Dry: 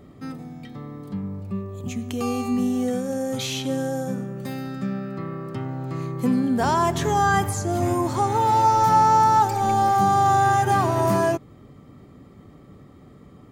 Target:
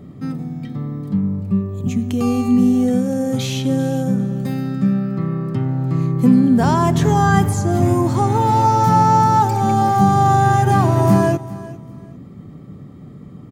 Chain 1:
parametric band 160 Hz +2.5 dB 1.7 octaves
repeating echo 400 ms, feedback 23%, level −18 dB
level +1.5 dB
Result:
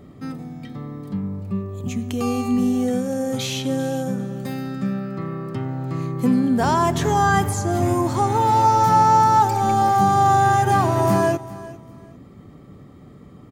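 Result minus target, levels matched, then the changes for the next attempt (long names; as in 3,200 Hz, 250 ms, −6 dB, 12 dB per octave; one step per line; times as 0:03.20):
125 Hz band −4.0 dB
change: parametric band 160 Hz +11.5 dB 1.7 octaves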